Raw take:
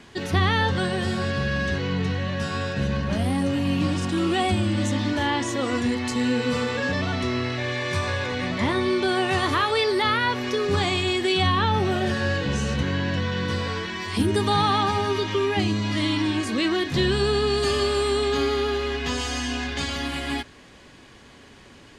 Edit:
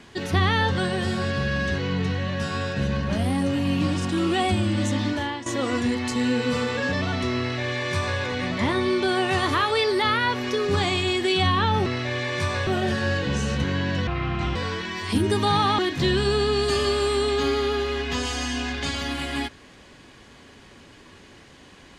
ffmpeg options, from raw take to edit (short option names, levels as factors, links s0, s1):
-filter_complex "[0:a]asplit=7[s0][s1][s2][s3][s4][s5][s6];[s0]atrim=end=5.46,asetpts=PTS-STARTPTS,afade=t=out:st=5.06:d=0.4:silence=0.211349[s7];[s1]atrim=start=5.46:end=11.862,asetpts=PTS-STARTPTS,afade=t=in:d=0.004:c=hsin:silence=0.211349[s8];[s2]atrim=start=7.388:end=8.202[s9];[s3]atrim=start=11.858:end=13.264[s10];[s4]atrim=start=13.26:end=13.6,asetpts=PTS-STARTPTS,asetrate=30870,aresample=44100[s11];[s5]atrim=start=13.596:end=14.832[s12];[s6]atrim=start=16.728[s13];[s7][s8]concat=n=2:v=0:a=1[s14];[s14][s9]acrossfade=d=0.004:c1=hsin:c2=hsin[s15];[s15][s10]acrossfade=d=0.004:c1=hsin:c2=hsin[s16];[s16][s11]acrossfade=d=0.004:c1=hsin:c2=hsin[s17];[s17][s12]acrossfade=d=0.004:c1=hsin:c2=hsin[s18];[s18][s13]acrossfade=d=0.004:c1=hsin:c2=hsin"